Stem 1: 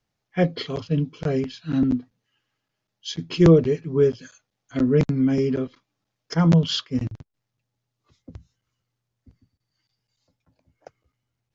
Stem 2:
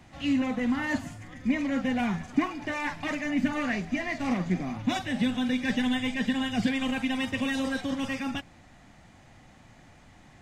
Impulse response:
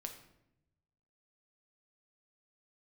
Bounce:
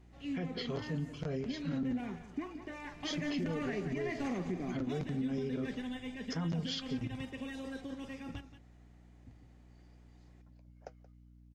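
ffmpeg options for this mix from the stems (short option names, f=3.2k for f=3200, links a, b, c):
-filter_complex "[0:a]acompressor=threshold=-26dB:ratio=4,flanger=delay=4.3:depth=4.3:regen=-65:speed=0.58:shape=triangular,volume=0dB,asplit=2[a][b];[b]volume=-18dB[c];[1:a]equalizer=f=400:t=o:w=0.64:g=12.5,volume=-5dB,afade=t=in:st=2.91:d=0.42:silence=0.281838,afade=t=out:st=4.34:d=0.76:silence=0.266073,asplit=2[d][e];[e]volume=-12.5dB[f];[c][f]amix=inputs=2:normalize=0,aecho=0:1:177:1[g];[a][d][g]amix=inputs=3:normalize=0,aeval=exprs='val(0)+0.00141*(sin(2*PI*60*n/s)+sin(2*PI*2*60*n/s)/2+sin(2*PI*3*60*n/s)/3+sin(2*PI*4*60*n/s)/4+sin(2*PI*5*60*n/s)/5)':c=same,alimiter=level_in=4dB:limit=-24dB:level=0:latency=1:release=120,volume=-4dB"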